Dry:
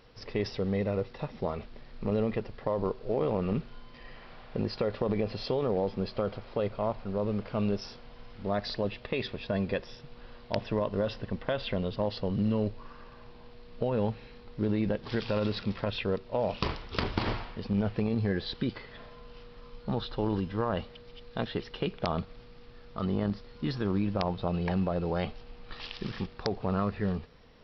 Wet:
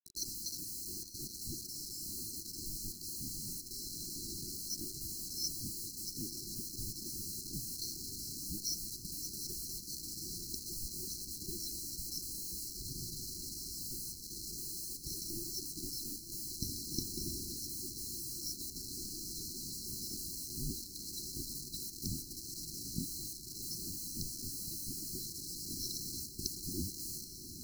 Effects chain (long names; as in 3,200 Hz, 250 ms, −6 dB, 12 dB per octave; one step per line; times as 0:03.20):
neighbouring bands swapped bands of 1,000 Hz
downward compressor 2.5 to 1, threshold −43 dBFS, peak gain reduction 13.5 dB
bit reduction 8 bits
linear-phase brick-wall band-stop 390–4,000 Hz
feedback delay with all-pass diffusion 867 ms, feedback 79%, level −11 dB
level +10.5 dB